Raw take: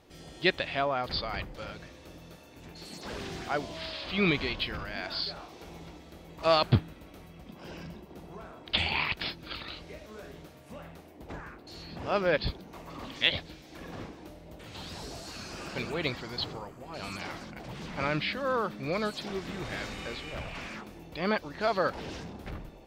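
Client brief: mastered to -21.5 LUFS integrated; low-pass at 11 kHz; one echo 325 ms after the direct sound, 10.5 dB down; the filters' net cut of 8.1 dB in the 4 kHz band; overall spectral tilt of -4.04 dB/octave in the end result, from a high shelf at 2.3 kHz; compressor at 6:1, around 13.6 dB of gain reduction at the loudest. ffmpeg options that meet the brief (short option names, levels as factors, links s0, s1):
-af "lowpass=11000,highshelf=f=2300:g=-7,equalizer=f=4000:t=o:g=-4,acompressor=threshold=0.0251:ratio=6,aecho=1:1:325:0.299,volume=8.41"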